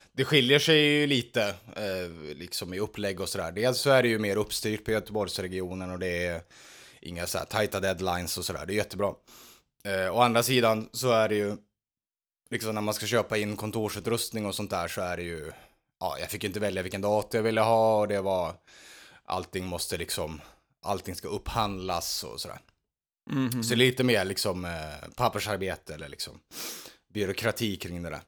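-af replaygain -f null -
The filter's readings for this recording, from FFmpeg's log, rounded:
track_gain = +7.2 dB
track_peak = 0.290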